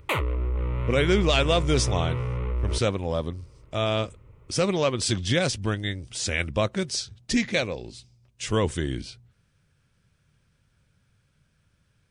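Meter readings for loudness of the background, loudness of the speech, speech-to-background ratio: −29.0 LKFS, −26.5 LKFS, 2.5 dB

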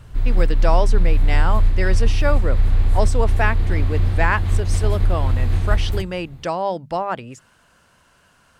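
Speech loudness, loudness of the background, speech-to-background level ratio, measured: −25.5 LKFS, −21.0 LKFS, −4.5 dB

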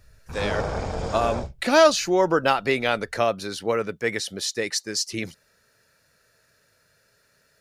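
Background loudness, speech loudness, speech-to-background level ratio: −30.5 LKFS, −23.5 LKFS, 7.0 dB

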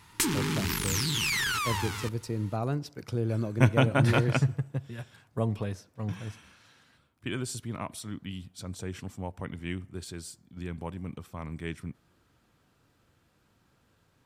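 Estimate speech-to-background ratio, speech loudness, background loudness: −4.0 dB, −32.5 LKFS, −28.5 LKFS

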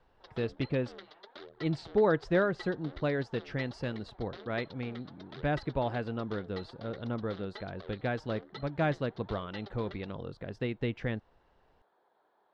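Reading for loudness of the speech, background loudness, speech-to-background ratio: −34.5 LKFS, −50.0 LKFS, 15.5 dB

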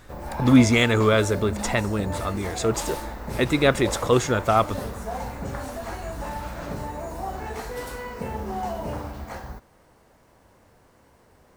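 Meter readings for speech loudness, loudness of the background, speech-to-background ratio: −22.0 LKFS, −33.0 LKFS, 11.0 dB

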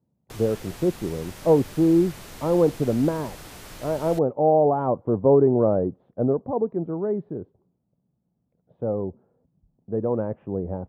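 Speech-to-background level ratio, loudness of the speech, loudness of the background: 18.0 dB, −23.5 LKFS, −41.5 LKFS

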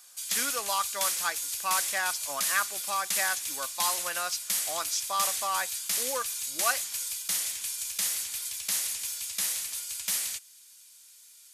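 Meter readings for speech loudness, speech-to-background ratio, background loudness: −33.0 LKFS, −3.5 dB, −29.5 LKFS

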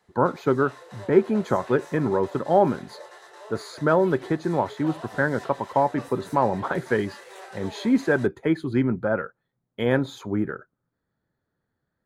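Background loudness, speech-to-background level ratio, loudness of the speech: −43.5 LKFS, 19.0 dB, −24.5 LKFS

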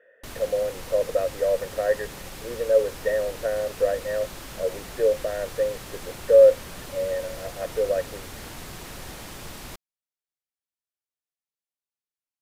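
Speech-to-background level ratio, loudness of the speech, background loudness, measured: 14.5 dB, −24.5 LKFS, −39.0 LKFS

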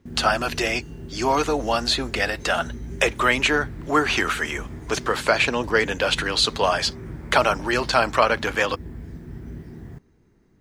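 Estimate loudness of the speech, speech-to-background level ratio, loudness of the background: −22.0 LKFS, 15.5 dB, −37.5 LKFS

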